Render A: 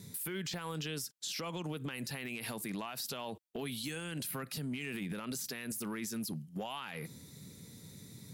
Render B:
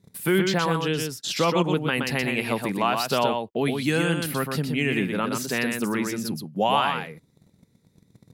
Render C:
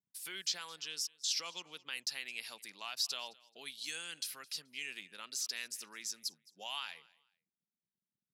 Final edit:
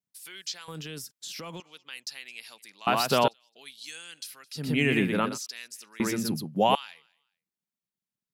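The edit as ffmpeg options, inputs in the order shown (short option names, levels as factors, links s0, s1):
-filter_complex "[1:a]asplit=3[s0][s1][s2];[2:a]asplit=5[s3][s4][s5][s6][s7];[s3]atrim=end=0.682[s8];[0:a]atrim=start=0.678:end=1.602[s9];[s4]atrim=start=1.598:end=2.872[s10];[s0]atrim=start=2.868:end=3.282[s11];[s5]atrim=start=3.278:end=4.71[s12];[s1]atrim=start=4.55:end=5.39[s13];[s6]atrim=start=5.23:end=6.002[s14];[s2]atrim=start=5.998:end=6.752[s15];[s7]atrim=start=6.748[s16];[s8][s9]acrossfade=d=0.004:c1=hsin:c2=hsin[s17];[s17][s10]acrossfade=d=0.004:c1=hsin:c2=hsin[s18];[s18][s11]acrossfade=d=0.004:c1=hsin:c2=hsin[s19];[s19][s12]acrossfade=d=0.004:c1=hsin:c2=hsin[s20];[s20][s13]acrossfade=d=0.16:c1=tri:c2=tri[s21];[s21][s14]acrossfade=d=0.16:c1=tri:c2=tri[s22];[s22][s15]acrossfade=d=0.004:c1=hsin:c2=hsin[s23];[s23][s16]acrossfade=d=0.004:c1=hsin:c2=hsin"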